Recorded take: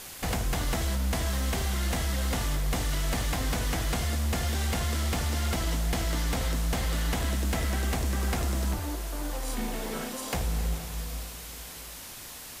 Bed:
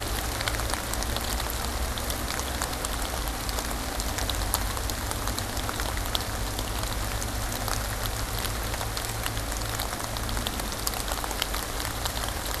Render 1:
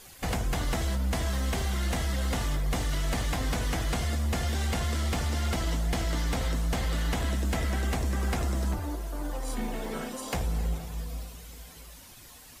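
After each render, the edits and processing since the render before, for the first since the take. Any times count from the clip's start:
broadband denoise 10 dB, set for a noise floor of −43 dBFS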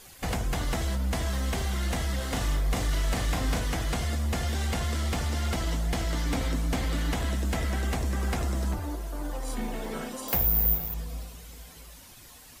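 0:02.16–0:03.60: double-tracking delay 38 ms −6 dB
0:06.26–0:07.11: hollow resonant body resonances 280/2,300 Hz, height 8 dB
0:10.28–0:10.94: bad sample-rate conversion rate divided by 3×, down filtered, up zero stuff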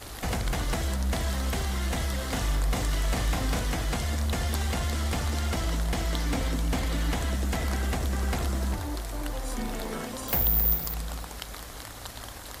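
mix in bed −11 dB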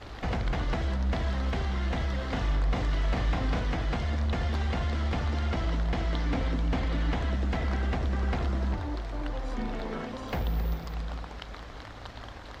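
high-frequency loss of the air 210 metres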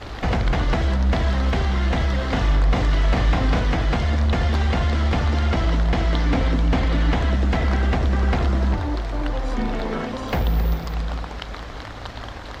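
level +9 dB

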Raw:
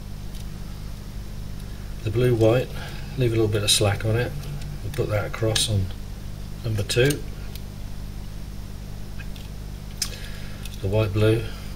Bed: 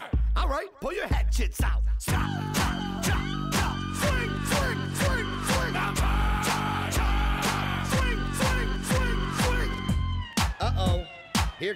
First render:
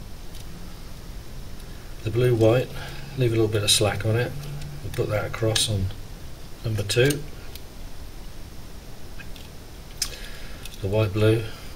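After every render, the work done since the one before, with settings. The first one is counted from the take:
hum removal 50 Hz, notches 5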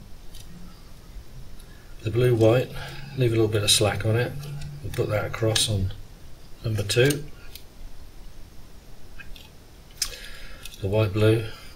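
noise reduction from a noise print 7 dB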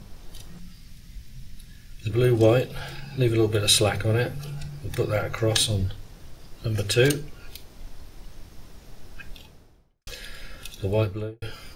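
0:00.59–0:02.10: flat-topped bell 660 Hz −13 dB 2.4 octaves
0:09.27–0:10.07: fade out and dull
0:10.89–0:11.42: fade out and dull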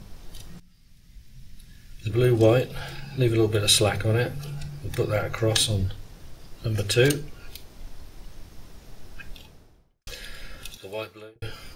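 0:00.60–0:02.18: fade in, from −15 dB
0:10.77–0:11.36: high-pass filter 1,300 Hz 6 dB per octave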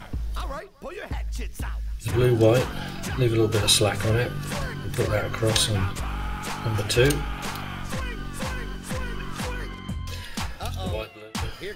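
mix in bed −5.5 dB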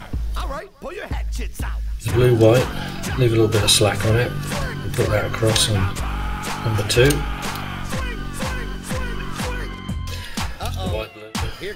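level +5 dB
brickwall limiter −3 dBFS, peak gain reduction 2 dB

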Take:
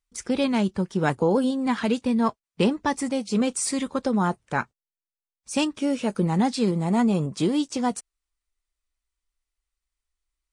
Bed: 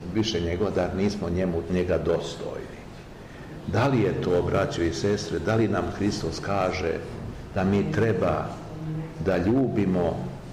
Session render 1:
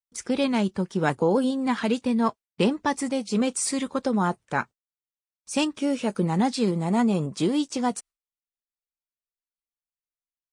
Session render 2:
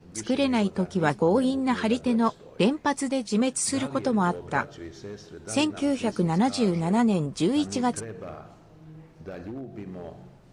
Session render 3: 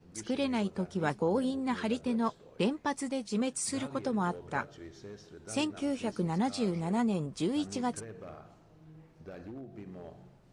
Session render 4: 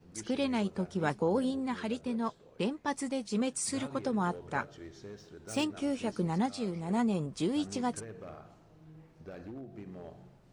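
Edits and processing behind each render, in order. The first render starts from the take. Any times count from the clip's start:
noise gate with hold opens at −52 dBFS; low-shelf EQ 74 Hz −10 dB
mix in bed −15 dB
level −7.5 dB
0:01.66–0:02.88: clip gain −3 dB; 0:05.14–0:05.64: running median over 3 samples; 0:06.46–0:06.89: clip gain −4 dB

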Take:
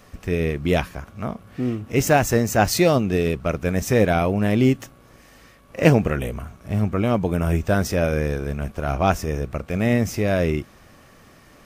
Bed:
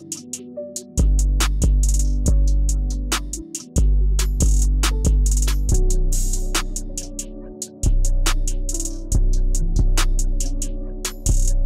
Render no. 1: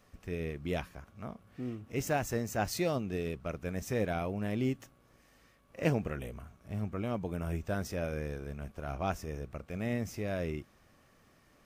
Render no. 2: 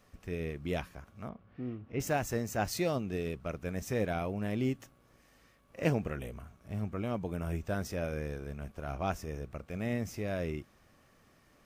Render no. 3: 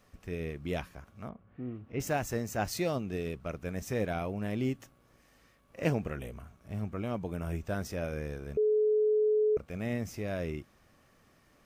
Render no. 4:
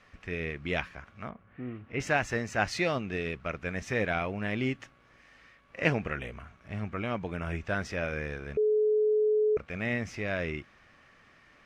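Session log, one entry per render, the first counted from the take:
level −14.5 dB
0:01.29–0:02.00: high-frequency loss of the air 280 metres
0:01.31–0:01.75: high-frequency loss of the air 300 metres; 0:08.57–0:09.57: beep over 427 Hz −23 dBFS
low-pass filter 6,100 Hz 12 dB per octave; parametric band 2,000 Hz +11.5 dB 1.8 octaves

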